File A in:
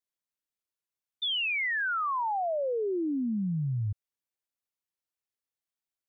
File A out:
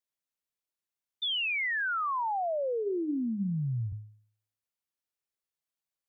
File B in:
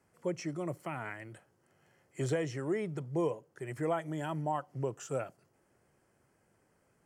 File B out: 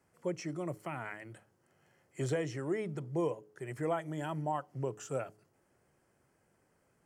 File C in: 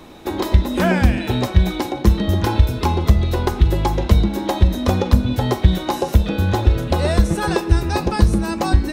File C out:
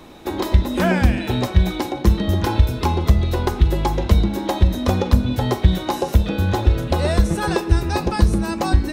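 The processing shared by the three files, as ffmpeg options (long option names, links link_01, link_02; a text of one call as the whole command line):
ffmpeg -i in.wav -af "bandreject=frequency=106.2:width_type=h:width=4,bandreject=frequency=212.4:width_type=h:width=4,bandreject=frequency=318.6:width_type=h:width=4,bandreject=frequency=424.8:width_type=h:width=4,volume=-1dB" out.wav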